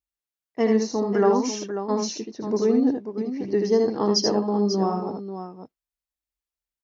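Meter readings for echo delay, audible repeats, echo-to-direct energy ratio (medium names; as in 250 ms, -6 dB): 78 ms, 2, -3.0 dB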